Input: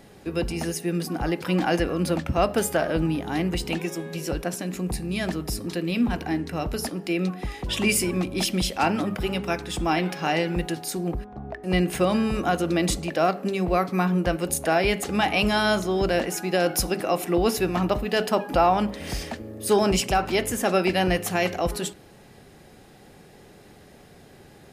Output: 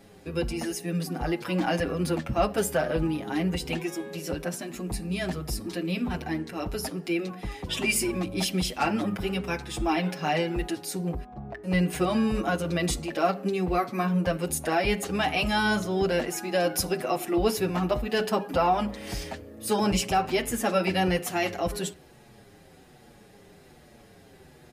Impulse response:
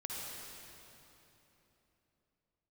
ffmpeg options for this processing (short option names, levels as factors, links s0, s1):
-filter_complex "[0:a]asplit=2[s0][s1];[s1]adelay=7,afreqshift=-1.2[s2];[s0][s2]amix=inputs=2:normalize=1"